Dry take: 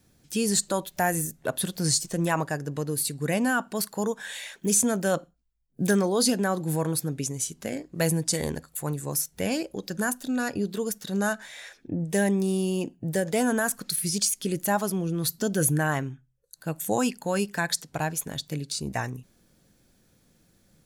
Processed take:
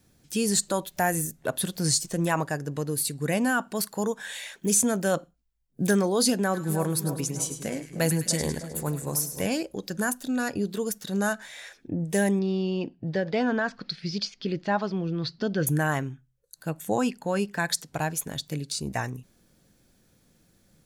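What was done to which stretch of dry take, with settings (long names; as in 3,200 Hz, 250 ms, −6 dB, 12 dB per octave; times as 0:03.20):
0:06.37–0:09.47: echo with a time of its own for lows and highs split 1,300 Hz, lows 305 ms, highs 103 ms, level −10 dB
0:12.39–0:15.67: elliptic low-pass filter 4,800 Hz, stop band 70 dB
0:16.70–0:17.60: high-shelf EQ 5,000 Hz −10 dB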